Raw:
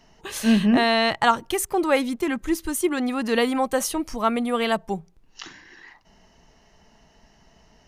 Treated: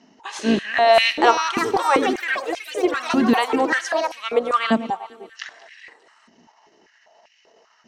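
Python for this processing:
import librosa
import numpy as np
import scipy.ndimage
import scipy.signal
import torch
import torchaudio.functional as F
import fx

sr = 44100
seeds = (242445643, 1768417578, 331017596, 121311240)

y = fx.octave_divider(x, sr, octaves=2, level_db=-3.0)
y = scipy.signal.sosfilt(scipy.signal.butter(4, 7300.0, 'lowpass', fs=sr, output='sos'), y)
y = fx.transient(y, sr, attack_db=0, sustain_db=-8)
y = fx.echo_alternate(y, sr, ms=101, hz=1200.0, feedback_pct=71, wet_db=-13.5)
y = fx.echo_pitch(y, sr, ms=707, semitones=6, count=2, db_per_echo=-6.0)
y = fx.filter_held_highpass(y, sr, hz=5.1, low_hz=240.0, high_hz=2400.0)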